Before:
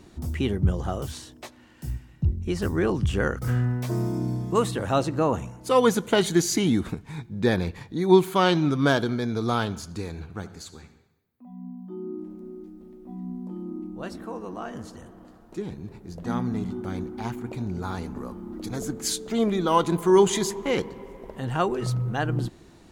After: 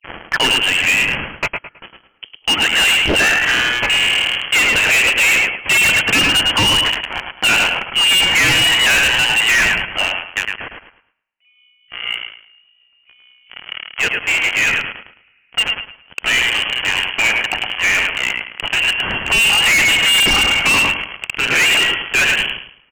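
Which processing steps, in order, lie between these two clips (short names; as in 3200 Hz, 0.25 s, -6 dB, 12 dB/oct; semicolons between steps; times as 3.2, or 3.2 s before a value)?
tape start at the beginning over 0.46 s; HPF 610 Hz 12 dB/oct; in parallel at -7 dB: fuzz box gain 41 dB, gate -42 dBFS; on the sum: sample leveller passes 2; on a send: feedback echo 0.107 s, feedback 28%, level -6 dB; on the sum: inverted band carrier 3200 Hz; dynamic EQ 1200 Hz, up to -4 dB, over -36 dBFS, Q 4.7; hard clip -16 dBFS, distortion -8 dB; gain +5 dB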